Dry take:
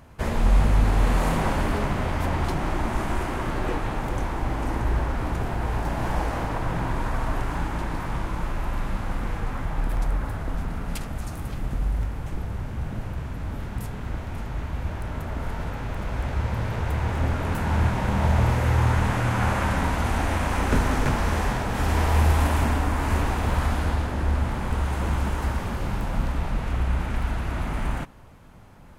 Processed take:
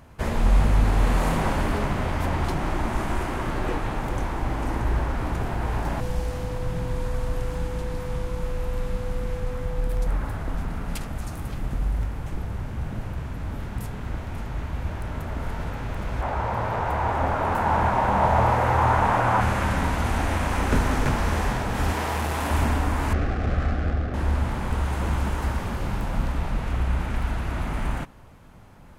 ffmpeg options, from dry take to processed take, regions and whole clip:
-filter_complex "[0:a]asettb=1/sr,asplit=3[a][b][c];[a]atrim=end=6.004[d];[b]atrim=start=6:end=10.07,asetpts=PTS-STARTPTS,afade=t=in:d=0.004:c=qsin,afade=t=out:st=4.066:d=0.004:c=qsin,acrossover=split=220|3000[e][f][g];[f]acompressor=threshold=-42dB:ratio=2.5:attack=3.2:release=140:knee=2.83:detection=peak[h];[e][h][g]amix=inputs=3:normalize=0,aeval=exprs='val(0)+0.02*sin(2*PI*500*n/s)':c=same[i];[c]atrim=start=10.066[j];[d][i]acrossfade=d=0.004:c1=hsin:c2=qsin[k];[k][j]acrossfade=d=0.004:c1=qsin:c2=hsin,asettb=1/sr,asplit=3[l][m][n];[l]atrim=end=16.214[o];[m]atrim=start=16.21:end=19.41,asetpts=PTS-STARTPTS,afade=t=in:d=0.004:c=qsin,afade=t=out:st=3.196:d=0.004:c=qsin,equalizer=f=850:w=0.7:g=15,flanger=delay=2.8:depth=6.6:regen=-74:speed=1.1:shape=sinusoidal[p];[n]atrim=start=19.406[q];[o][p]acrossfade=d=0.004:c1=hsin:c2=qsin[r];[r][q]acrossfade=d=0.004:c1=qsin:c2=hsin,asettb=1/sr,asplit=3[s][t][u];[s]atrim=end=21.924[v];[t]atrim=start=21.92:end=22.51,asetpts=PTS-STARTPTS,afade=t=in:d=0.004:c=qsin,afade=t=out:st=0.586:d=0.004:c=qsin,asoftclip=type=hard:threshold=-15dB,highpass=f=220:p=1[w];[u]atrim=start=22.506[x];[v][w]acrossfade=d=0.004:c1=hsin:c2=qsin[y];[y][x]acrossfade=d=0.004:c1=qsin:c2=hsin,asettb=1/sr,asplit=3[z][aa][ab];[z]atrim=end=23.134[ac];[aa]atrim=start=23.13:end=24.14,asetpts=PTS-STARTPTS,afade=t=in:d=0.004:c=qsin,afade=t=out:st=1.006:d=0.004:c=qsin,asuperstop=centerf=950:order=4:qfactor=2.9,adynamicsmooth=sensitivity=3:basefreq=1k[ad];[ab]atrim=start=24.136[ae];[ac][ad]acrossfade=d=0.004:c1=hsin:c2=qsin[af];[af][ae]acrossfade=d=0.004:c1=qsin:c2=hsin"

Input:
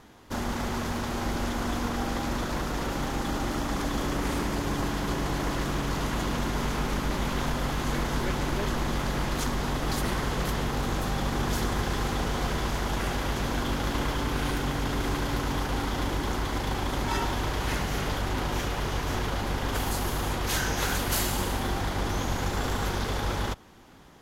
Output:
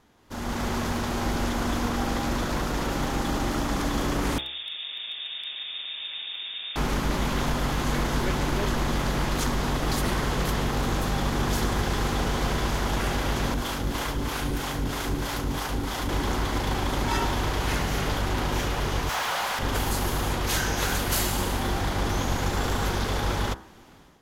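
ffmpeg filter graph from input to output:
-filter_complex "[0:a]asettb=1/sr,asplit=3[a][b][c];[a]atrim=end=4.384[d];[b]atrim=start=4.38:end=6.76,asetpts=PTS-STARTPTS,afade=t=in:d=0.004:c=qsin,afade=t=out:st=2.376:d=0.004:c=qsin,acrossover=split=270|1900[e][f][g];[e]acompressor=threshold=-39dB:ratio=4[h];[f]acompressor=threshold=-45dB:ratio=4[i];[g]acompressor=threshold=-55dB:ratio=4[j];[h][i][j]amix=inputs=3:normalize=0,lowpass=f=3.1k:t=q:w=0.5098,lowpass=f=3.1k:t=q:w=0.6013,lowpass=f=3.1k:t=q:w=0.9,lowpass=f=3.1k:t=q:w=2.563,afreqshift=-3700,aeval=exprs='0.0398*(abs(mod(val(0)/0.0398+3,4)-2)-1)':c=same[k];[c]atrim=start=6.756[l];[d][k]acrossfade=d=0.004:c1=hsin:c2=qsin[m];[m][l]acrossfade=d=0.004:c1=qsin:c2=hsin,asettb=1/sr,asplit=3[n][o][p];[n]atrim=end=13.544[q];[o]atrim=start=13.54:end=16.09,asetpts=PTS-STARTPTS,afade=t=in:d=0.004:c=qsin,afade=t=out:st=2.546:d=0.004:c=qsin,highshelf=f=6.6k:g=6,acrossover=split=490[r][s];[r]aeval=exprs='val(0)*(1-0.7/2+0.7/2*cos(2*PI*3.1*n/s))':c=same[t];[s]aeval=exprs='val(0)*(1-0.7/2-0.7/2*cos(2*PI*3.1*n/s))':c=same[u];[t][u]amix=inputs=2:normalize=0[v];[p]atrim=start=16.086[w];[q][v]acrossfade=d=0.004:c1=hsin:c2=qsin[x];[x][w]acrossfade=d=0.004:c1=qsin:c2=hsin,asettb=1/sr,asplit=3[y][z][aa];[y]atrim=end=19.094[ab];[z]atrim=start=19.09:end=19.59,asetpts=PTS-STARTPTS,afade=t=in:d=0.004:c=qsin,afade=t=out:st=0.496:d=0.004:c=qsin,highpass=f=600:w=0.5412,highpass=f=600:w=1.3066,aemphasis=mode=production:type=75kf,asplit=2[ac][ad];[ad]highpass=f=720:p=1,volume=20dB,asoftclip=type=tanh:threshold=-18dB[ae];[ac][ae]amix=inputs=2:normalize=0,lowpass=f=1.4k:p=1,volume=-6dB[af];[aa]atrim=start=19.586[ag];[ab][af]acrossfade=d=0.004:c1=hsin:c2=qsin[ah];[ah][ag]acrossfade=d=0.004:c1=qsin:c2=hsin,bandreject=f=65.7:t=h:w=4,bandreject=f=131.4:t=h:w=4,bandreject=f=197.1:t=h:w=4,bandreject=f=262.8:t=h:w=4,bandreject=f=328.5:t=h:w=4,bandreject=f=394.2:t=h:w=4,bandreject=f=459.9:t=h:w=4,bandreject=f=525.6:t=h:w=4,bandreject=f=591.3:t=h:w=4,bandreject=f=657:t=h:w=4,bandreject=f=722.7:t=h:w=4,bandreject=f=788.4:t=h:w=4,bandreject=f=854.1:t=h:w=4,bandreject=f=919.8:t=h:w=4,bandreject=f=985.5:t=h:w=4,bandreject=f=1.0512k:t=h:w=4,bandreject=f=1.1169k:t=h:w=4,bandreject=f=1.1826k:t=h:w=4,bandreject=f=1.2483k:t=h:w=4,bandreject=f=1.314k:t=h:w=4,bandreject=f=1.3797k:t=h:w=4,bandreject=f=1.4454k:t=h:w=4,bandreject=f=1.5111k:t=h:w=4,bandreject=f=1.5768k:t=h:w=4,bandreject=f=1.6425k:t=h:w=4,bandreject=f=1.7082k:t=h:w=4,bandreject=f=1.7739k:t=h:w=4,bandreject=f=1.8396k:t=h:w=4,bandreject=f=1.9053k:t=h:w=4,bandreject=f=1.971k:t=h:w=4,bandreject=f=2.0367k:t=h:w=4,bandreject=f=2.1024k:t=h:w=4,dynaudnorm=f=170:g=5:m=11dB,volume=-8dB"

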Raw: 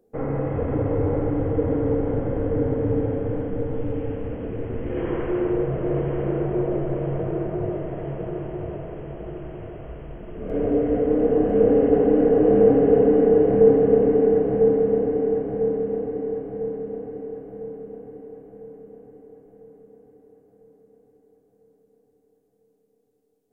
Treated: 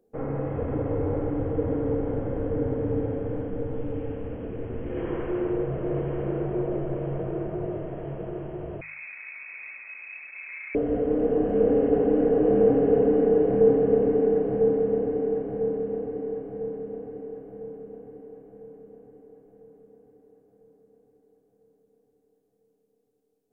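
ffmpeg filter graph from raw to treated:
-filter_complex "[0:a]asettb=1/sr,asplit=3[a][b][c];[a]atrim=end=8.814[d];[b]atrim=start=8.81:end=10.75,asetpts=PTS-STARTPTS,afade=t=in:d=0.004:c=qsin,afade=t=out:st=1.936:d=0.004:c=qsin,acompressor=threshold=-30dB:ratio=6:attack=3.2:release=140:knee=1:detection=peak,aeval=exprs='clip(val(0),-1,0.015)':c=same,lowpass=f=2.2k:t=q:w=0.5098,lowpass=f=2.2k:t=q:w=0.6013,lowpass=f=2.2k:t=q:w=0.9,lowpass=f=2.2k:t=q:w=2.563,afreqshift=-2600[e];[c]atrim=start=10.746[f];[d][e]acrossfade=d=0.004:c1=hsin:c2=qsin[g];[g][f]acrossfade=d=0.004:c1=qsin:c2=hsin,bandreject=f=2k:w=28,bandreject=f=51.87:t=h:w=4,bandreject=f=103.74:t=h:w=4,bandreject=f=155.61:t=h:w=4,volume=-4dB"

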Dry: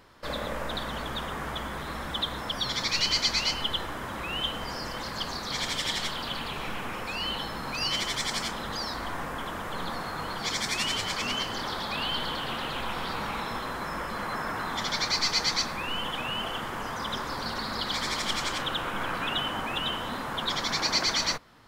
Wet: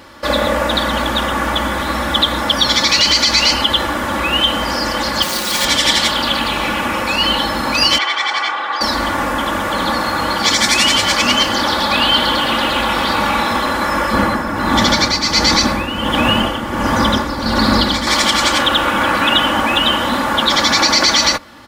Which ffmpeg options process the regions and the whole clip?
-filter_complex "[0:a]asettb=1/sr,asplit=3[a][b][c];[a]atrim=end=5.224[d];[b]atrim=start=5.22:end=5.65,asetpts=PTS-STARTPTS,afade=t=in:d=0.004:c=qsin,afade=t=out:st=0.426:d=0.004:c=qsin,highpass=f=120:w=0.5412,highpass=f=120:w=1.3066,aecho=1:1:5.6:0.73,atrim=end_sample=18963,acrusher=bits=3:dc=4:mix=0:aa=0.000001[e];[c]atrim=start=5.646[f];[d][e]acrossfade=d=0.004:c1=hsin:c2=qsin[g];[g][f]acrossfade=d=0.004:c1=qsin:c2=hsin,asettb=1/sr,asplit=3[h][i][j];[h]atrim=end=7.984[k];[i]atrim=start=7.98:end=8.81,asetpts=PTS-STARTPTS,afade=t=in:d=0.004:c=qsin,afade=t=out:st=0.826:d=0.004:c=qsin,highpass=790,lowpass=2.4k,aecho=1:1:2.6:0.52,atrim=end_sample=36603[l];[j]atrim=start=8.806[m];[k][l]acrossfade=d=0.004:c1=hsin:c2=qsin[n];[n][m]acrossfade=d=0.004:c1=qsin:c2=hsin,asettb=1/sr,asplit=3[o][p][q];[o]atrim=end=14.134[r];[p]atrim=start=14.13:end=18.07,asetpts=PTS-STARTPTS,afade=t=in:d=0.004:c=qsin,afade=t=out:st=3.936:d=0.004:c=qsin,lowshelf=f=380:g=11.5,tremolo=f=1.4:d=0.63[s];[q]atrim=start=18.066[t];[r][s]acrossfade=d=0.004:c1=hsin:c2=qsin[u];[u][t]acrossfade=d=0.004:c1=qsin:c2=hsin,highpass=54,aecho=1:1:3.5:0.62,alimiter=level_in=16.5dB:limit=-1dB:release=50:level=0:latency=1,volume=-1dB"

